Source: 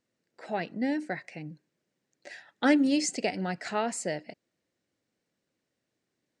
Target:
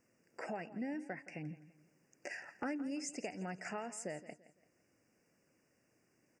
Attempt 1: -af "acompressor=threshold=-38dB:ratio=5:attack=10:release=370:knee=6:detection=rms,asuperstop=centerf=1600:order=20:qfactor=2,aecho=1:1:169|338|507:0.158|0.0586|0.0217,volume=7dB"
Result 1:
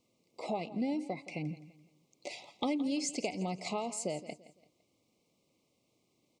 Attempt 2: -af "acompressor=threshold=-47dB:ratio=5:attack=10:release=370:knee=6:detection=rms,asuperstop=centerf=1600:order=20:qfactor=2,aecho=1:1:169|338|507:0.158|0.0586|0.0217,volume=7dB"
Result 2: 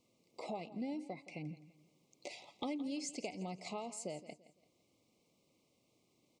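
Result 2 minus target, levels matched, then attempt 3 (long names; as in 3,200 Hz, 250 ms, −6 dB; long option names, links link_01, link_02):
2,000 Hz band −6.5 dB
-af "acompressor=threshold=-47dB:ratio=5:attack=10:release=370:knee=6:detection=rms,asuperstop=centerf=3700:order=20:qfactor=2,aecho=1:1:169|338|507:0.158|0.0586|0.0217,volume=7dB"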